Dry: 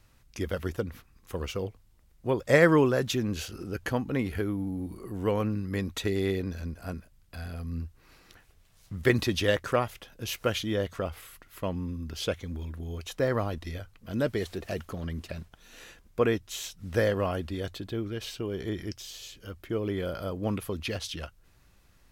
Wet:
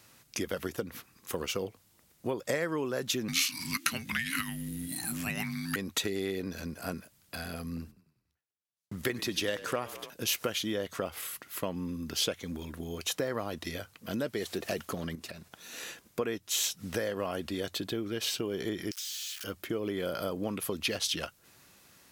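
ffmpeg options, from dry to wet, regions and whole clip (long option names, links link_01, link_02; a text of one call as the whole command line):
ffmpeg -i in.wav -filter_complex "[0:a]asettb=1/sr,asplit=3[link_01][link_02][link_03];[link_01]atrim=end=3.284[link_04];[link_02]atrim=start=3.28:end=5.76,asetpts=PTS-STARTPTS,afade=type=in:duration=0.004:curve=qsin,afade=type=out:start_time=2.476:duration=0.004:curve=qsin,highshelf=frequency=1600:width_type=q:width=1.5:gain=13.5,afreqshift=-350[link_05];[link_03]atrim=start=5.756[link_06];[link_04][link_05]acrossfade=duration=0.004:curve1=hsin:curve2=qsin[link_07];[link_07][link_06]acrossfade=duration=0.004:curve1=qsin:curve2=hsin,asettb=1/sr,asplit=3[link_08][link_09][link_10];[link_08]atrim=end=7.774[link_11];[link_09]atrim=start=7.77:end=10.1,asetpts=PTS-STARTPTS,afade=type=in:duration=0.004:curve=qsin,afade=type=out:start_time=2.326:duration=0.004:curve=qsin,agate=range=-40dB:threshold=-48dB:ratio=16:release=100:detection=peak,asplit=6[link_12][link_13][link_14][link_15][link_16][link_17];[link_13]adelay=96,afreqshift=-31,volume=-18.5dB[link_18];[link_14]adelay=192,afreqshift=-62,volume=-23.5dB[link_19];[link_15]adelay=288,afreqshift=-93,volume=-28.6dB[link_20];[link_16]adelay=384,afreqshift=-124,volume=-33.6dB[link_21];[link_17]adelay=480,afreqshift=-155,volume=-38.6dB[link_22];[link_12][link_18][link_19][link_20][link_21][link_22]amix=inputs=6:normalize=0,atrim=end_sample=102753[link_23];[link_10]atrim=start=10.096[link_24];[link_11][link_23]acrossfade=duration=0.004:curve1=hsin:curve2=qsin[link_25];[link_25][link_24]acrossfade=duration=0.004:curve1=qsin:curve2=hsin,asettb=1/sr,asplit=3[link_26][link_27][link_28];[link_26]atrim=end=15.154[link_29];[link_27]atrim=start=15.15:end=15.83,asetpts=PTS-STARTPTS,afade=type=in:duration=0.004:curve=qsin,afade=type=out:start_time=0.676:duration=0.004:curve=qsin,bandreject=frequency=3100:width=17,acompressor=threshold=-44dB:ratio=5:attack=3.2:release=140:knee=1:detection=peak[link_30];[link_28]atrim=start=15.826[link_31];[link_29][link_30]acrossfade=duration=0.004:curve1=hsin:curve2=qsin[link_32];[link_32][link_31]acrossfade=duration=0.004:curve1=qsin:curve2=hsin,asettb=1/sr,asplit=3[link_33][link_34][link_35];[link_33]atrim=end=18.914[link_36];[link_34]atrim=start=18.91:end=19.44,asetpts=PTS-STARTPTS,afade=type=in:duration=0.004:curve=qsin,afade=type=out:start_time=0.526:duration=0.004:curve=qsin,aeval=exprs='val(0)+0.5*0.0106*sgn(val(0))':channel_layout=same,highpass=frequency=1400:width=0.5412,highpass=frequency=1400:width=1.3066,acompressor=threshold=-44dB:ratio=10:attack=3.2:release=140:knee=1:detection=peak[link_37];[link_35]atrim=start=19.436[link_38];[link_36][link_37]acrossfade=duration=0.004:curve1=hsin:curve2=qsin[link_39];[link_39][link_38]acrossfade=duration=0.004:curve1=qsin:curve2=hsin,acompressor=threshold=-34dB:ratio=8,highpass=170,highshelf=frequency=4000:gain=7,volume=5dB" out.wav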